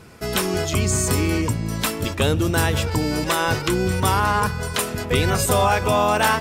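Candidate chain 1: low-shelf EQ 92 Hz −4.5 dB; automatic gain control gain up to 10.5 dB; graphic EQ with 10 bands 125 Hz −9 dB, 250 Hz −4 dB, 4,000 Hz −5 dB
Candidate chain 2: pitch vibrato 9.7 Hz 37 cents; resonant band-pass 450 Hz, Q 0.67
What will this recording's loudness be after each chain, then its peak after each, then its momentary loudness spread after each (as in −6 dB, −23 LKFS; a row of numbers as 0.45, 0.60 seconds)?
−17.0, −25.0 LKFS; −1.5, −10.0 dBFS; 7, 9 LU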